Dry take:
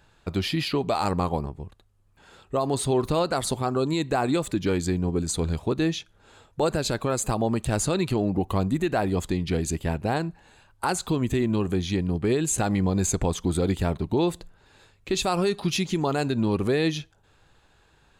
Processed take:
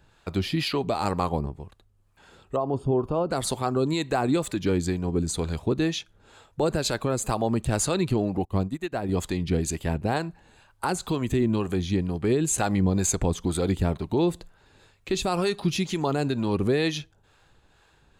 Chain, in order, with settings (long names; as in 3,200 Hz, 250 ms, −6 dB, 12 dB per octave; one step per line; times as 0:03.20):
0:02.56–0:03.30: moving average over 22 samples
two-band tremolo in antiphase 2.1 Hz, depth 50%, crossover 490 Hz
0:08.45–0:09.09: expander for the loud parts 2.5 to 1, over −36 dBFS
level +2 dB